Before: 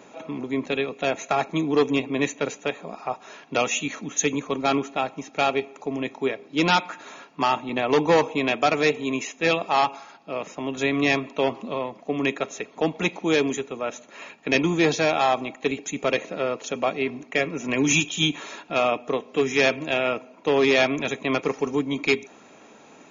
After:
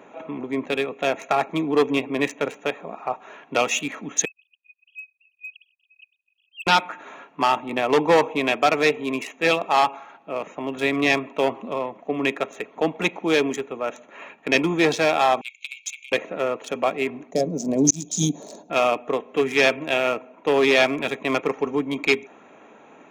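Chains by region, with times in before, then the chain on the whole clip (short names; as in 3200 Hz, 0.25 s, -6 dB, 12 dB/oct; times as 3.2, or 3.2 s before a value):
4.25–6.67 sine-wave speech + brick-wall FIR high-pass 2500 Hz + mismatched tape noise reduction encoder only
15.41–16.12 high shelf 2700 Hz +7 dB + compressor 12:1, threshold -25 dBFS + brick-wall FIR high-pass 2100 Hz
17.31–18.7 EQ curve 110 Hz 0 dB, 180 Hz +10 dB, 350 Hz 0 dB, 640 Hz +4 dB, 1300 Hz -21 dB, 2900 Hz -22 dB, 4400 Hz +6 dB, 6300 Hz +11 dB, 10000 Hz -1 dB + auto swell 0.314 s
whole clip: Wiener smoothing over 9 samples; low shelf 220 Hz -8 dB; gain +3 dB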